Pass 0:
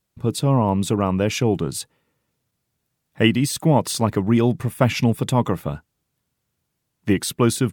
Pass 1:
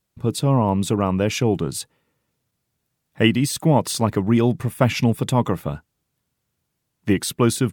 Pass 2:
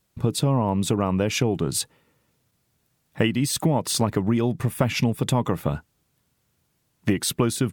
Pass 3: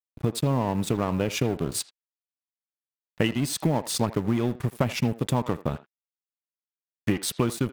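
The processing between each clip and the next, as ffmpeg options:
ffmpeg -i in.wav -af anull out.wav
ffmpeg -i in.wav -af "acompressor=threshold=-24dB:ratio=6,volume=5.5dB" out.wav
ffmpeg -i in.wav -filter_complex "[0:a]aeval=exprs='sgn(val(0))*max(abs(val(0))-0.0211,0)':channel_layout=same,acrusher=bits=9:mode=log:mix=0:aa=0.000001,asplit=2[link_01][link_02];[link_02]adelay=80,highpass=300,lowpass=3400,asoftclip=type=hard:threshold=-16.5dB,volume=-15dB[link_03];[link_01][link_03]amix=inputs=2:normalize=0,volume=-1.5dB" out.wav

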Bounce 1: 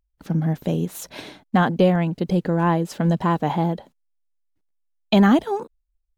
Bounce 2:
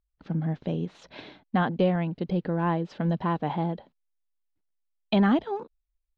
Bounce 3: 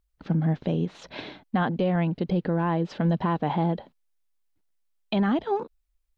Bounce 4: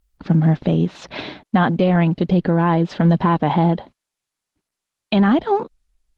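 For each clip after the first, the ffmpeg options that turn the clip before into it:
ffmpeg -i in.wav -af "lowpass=frequency=4300:width=0.5412,lowpass=frequency=4300:width=1.3066,volume=-6.5dB" out.wav
ffmpeg -i in.wav -af "alimiter=limit=-22.5dB:level=0:latency=1:release=187,volume=6dB" out.wav
ffmpeg -i in.wav -af "equalizer=frequency=480:width=3.2:gain=-3,volume=9dB" -ar 48000 -c:a libopus -b:a 16k out.opus

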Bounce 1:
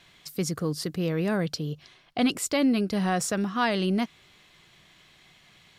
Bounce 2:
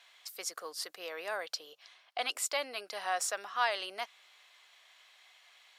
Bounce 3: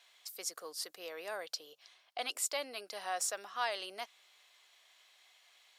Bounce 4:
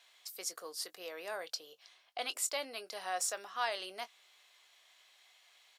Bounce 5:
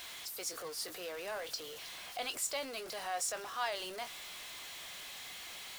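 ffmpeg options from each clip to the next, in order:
ffmpeg -i in.wav -af "highpass=frequency=620:width=0.5412,highpass=frequency=620:width=1.3066,volume=-3.5dB" out.wav
ffmpeg -i in.wav -af "equalizer=frequency=1500:width=0.4:gain=-7,volume=1dB" out.wav
ffmpeg -i in.wav -filter_complex "[0:a]asplit=2[link_01][link_02];[link_02]adelay=22,volume=-13.5dB[link_03];[link_01][link_03]amix=inputs=2:normalize=0" out.wav
ffmpeg -i in.wav -af "aeval=exprs='val(0)+0.5*0.0112*sgn(val(0))':channel_layout=same,volume=-3dB" out.wav

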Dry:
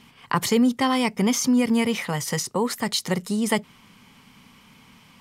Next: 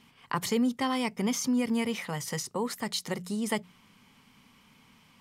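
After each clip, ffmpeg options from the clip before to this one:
ffmpeg -i in.wav -af "bandreject=frequency=60:width_type=h:width=6,bandreject=frequency=120:width_type=h:width=6,bandreject=frequency=180:width_type=h:width=6,volume=-7.5dB" out.wav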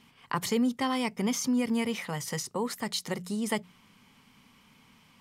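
ffmpeg -i in.wav -af anull out.wav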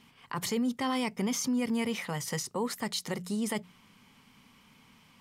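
ffmpeg -i in.wav -af "alimiter=limit=-23dB:level=0:latency=1:release=15" out.wav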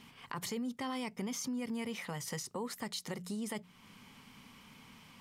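ffmpeg -i in.wav -af "acompressor=threshold=-48dB:ratio=2,volume=3dB" out.wav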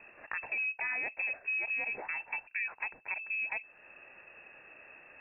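ffmpeg -i in.wav -af "lowpass=frequency=2400:width_type=q:width=0.5098,lowpass=frequency=2400:width_type=q:width=0.6013,lowpass=frequency=2400:width_type=q:width=0.9,lowpass=frequency=2400:width_type=q:width=2.563,afreqshift=-2800,volume=3.5dB" out.wav

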